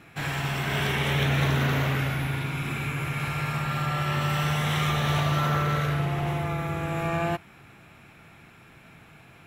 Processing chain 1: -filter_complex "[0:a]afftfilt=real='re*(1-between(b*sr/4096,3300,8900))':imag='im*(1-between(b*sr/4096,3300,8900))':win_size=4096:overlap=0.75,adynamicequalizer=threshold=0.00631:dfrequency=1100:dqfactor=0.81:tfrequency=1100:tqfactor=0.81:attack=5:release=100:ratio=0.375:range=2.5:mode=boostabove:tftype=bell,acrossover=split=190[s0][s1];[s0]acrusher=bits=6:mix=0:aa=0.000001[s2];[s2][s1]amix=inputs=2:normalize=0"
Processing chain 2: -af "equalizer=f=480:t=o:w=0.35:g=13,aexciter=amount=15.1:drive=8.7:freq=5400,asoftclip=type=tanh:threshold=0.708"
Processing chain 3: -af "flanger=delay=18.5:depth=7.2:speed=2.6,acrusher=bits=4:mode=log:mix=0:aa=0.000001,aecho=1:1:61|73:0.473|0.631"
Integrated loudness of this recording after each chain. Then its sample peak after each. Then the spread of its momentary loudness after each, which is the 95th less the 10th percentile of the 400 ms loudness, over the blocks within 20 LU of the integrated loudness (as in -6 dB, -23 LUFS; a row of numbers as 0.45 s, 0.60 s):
-25.0 LUFS, -16.5 LUFS, -27.0 LUFS; -11.0 dBFS, -5.0 dBFS, -13.0 dBFS; 6 LU, 8 LU, 6 LU